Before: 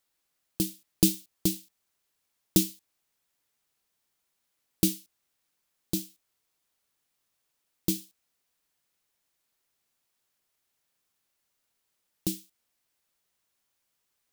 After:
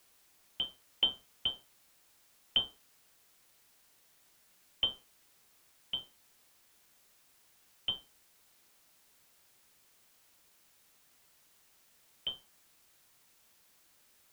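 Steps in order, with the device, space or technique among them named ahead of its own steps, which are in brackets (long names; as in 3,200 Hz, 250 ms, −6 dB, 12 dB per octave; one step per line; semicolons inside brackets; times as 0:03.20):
scrambled radio voice (band-pass filter 340–2,800 Hz; voice inversion scrambler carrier 3,400 Hz; white noise bed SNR 22 dB)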